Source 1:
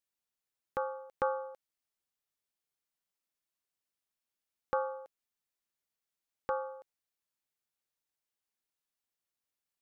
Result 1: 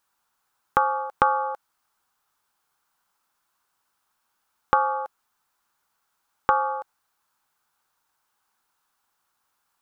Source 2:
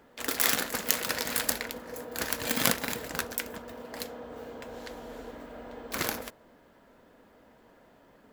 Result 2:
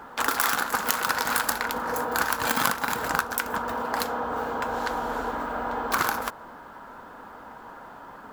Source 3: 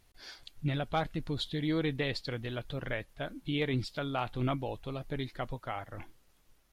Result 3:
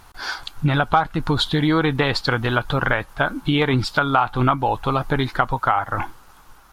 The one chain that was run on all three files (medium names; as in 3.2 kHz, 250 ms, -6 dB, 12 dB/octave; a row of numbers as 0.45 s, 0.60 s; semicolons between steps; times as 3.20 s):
high-order bell 1.1 kHz +12 dB 1.2 oct; compression 4:1, threshold -32 dBFS; peak normalisation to -1.5 dBFS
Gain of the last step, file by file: +13.5 dB, +9.5 dB, +16.5 dB